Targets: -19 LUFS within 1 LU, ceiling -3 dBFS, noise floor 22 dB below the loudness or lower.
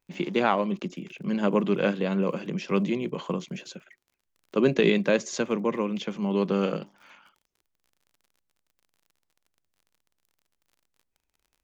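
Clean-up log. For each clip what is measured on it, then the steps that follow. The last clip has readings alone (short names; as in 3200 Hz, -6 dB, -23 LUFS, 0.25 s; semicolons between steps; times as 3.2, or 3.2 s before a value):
ticks 39/s; loudness -26.5 LUFS; peak -8.5 dBFS; loudness target -19.0 LUFS
-> de-click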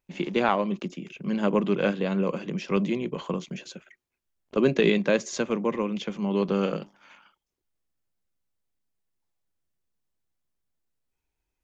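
ticks 0/s; loudness -26.5 LUFS; peak -8.5 dBFS; loudness target -19.0 LUFS
-> gain +7.5 dB; limiter -3 dBFS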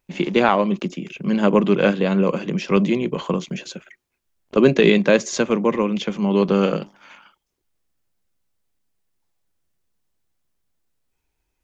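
loudness -19.5 LUFS; peak -3.0 dBFS; noise floor -77 dBFS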